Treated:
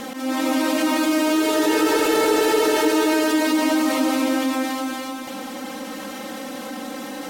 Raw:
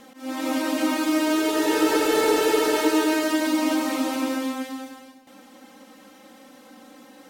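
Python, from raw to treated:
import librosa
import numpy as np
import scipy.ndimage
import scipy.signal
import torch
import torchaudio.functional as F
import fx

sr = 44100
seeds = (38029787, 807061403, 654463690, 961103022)

y = fx.echo_feedback(x, sr, ms=289, feedback_pct=36, wet_db=-10.0)
y = fx.env_flatten(y, sr, amount_pct=50)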